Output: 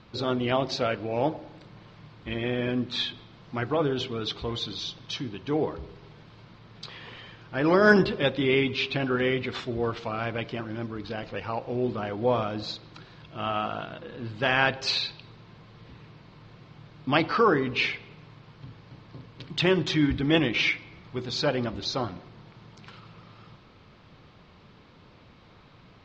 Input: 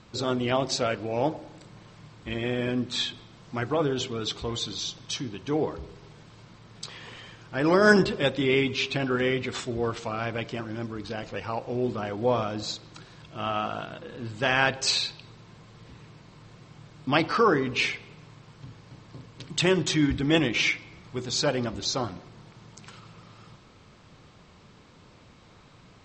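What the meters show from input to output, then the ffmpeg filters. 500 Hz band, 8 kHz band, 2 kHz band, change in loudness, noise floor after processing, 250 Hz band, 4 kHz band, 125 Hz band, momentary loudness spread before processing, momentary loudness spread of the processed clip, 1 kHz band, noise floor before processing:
0.0 dB, −11.5 dB, 0.0 dB, −0.5 dB, −54 dBFS, 0.0 dB, −1.0 dB, 0.0 dB, 16 LU, 16 LU, 0.0 dB, −54 dBFS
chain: -af "lowpass=frequency=4700:width=0.5412,lowpass=frequency=4700:width=1.3066"

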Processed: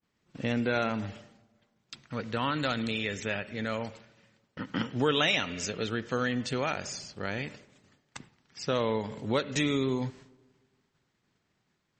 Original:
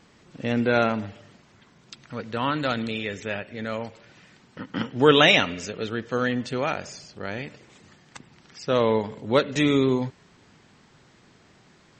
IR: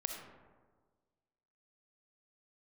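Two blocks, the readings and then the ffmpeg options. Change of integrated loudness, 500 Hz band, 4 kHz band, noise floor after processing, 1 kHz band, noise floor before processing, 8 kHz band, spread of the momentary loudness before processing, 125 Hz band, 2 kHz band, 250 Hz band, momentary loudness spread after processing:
−7.0 dB, −8.0 dB, −6.5 dB, −77 dBFS, −7.0 dB, −57 dBFS, +0.5 dB, 18 LU, −4.5 dB, −6.5 dB, −6.0 dB, 16 LU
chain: -filter_complex "[0:a]adynamicequalizer=threshold=0.00708:dfrequency=7100:dqfactor=0.78:tfrequency=7100:tqfactor=0.78:attack=5:release=100:ratio=0.375:range=2:mode=boostabove:tftype=bell,agate=range=-33dB:threshold=-43dB:ratio=3:detection=peak,equalizer=frequency=510:width=0.48:gain=-3,acompressor=threshold=-28dB:ratio=2.5,asplit=2[link_01][link_02];[1:a]atrim=start_sample=2205,lowpass=4700[link_03];[link_02][link_03]afir=irnorm=-1:irlink=0,volume=-18.5dB[link_04];[link_01][link_04]amix=inputs=2:normalize=0"

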